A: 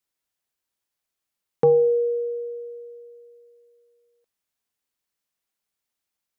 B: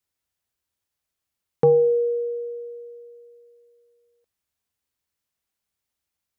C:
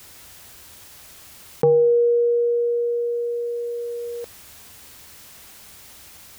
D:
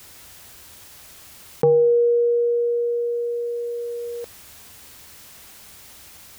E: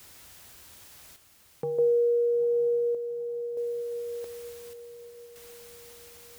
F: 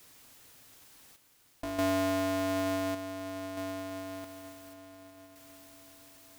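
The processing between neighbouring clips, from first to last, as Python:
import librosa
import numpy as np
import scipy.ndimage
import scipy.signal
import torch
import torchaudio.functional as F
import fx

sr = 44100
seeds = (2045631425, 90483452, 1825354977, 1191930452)

y1 = fx.peak_eq(x, sr, hz=75.0, db=11.5, octaves=1.4)
y2 = fx.env_flatten(y1, sr, amount_pct=70)
y2 = y2 * 10.0 ** (-1.0 / 20.0)
y3 = y2
y4 = fx.chopper(y3, sr, hz=0.56, depth_pct=65, duty_pct=65)
y4 = fx.echo_diffused(y4, sr, ms=905, feedback_pct=51, wet_db=-14.0)
y4 = y4 * 10.0 ** (-6.0 / 20.0)
y5 = y4 * np.sign(np.sin(2.0 * np.pi * 190.0 * np.arange(len(y4)) / sr))
y5 = y5 * 10.0 ** (-6.0 / 20.0)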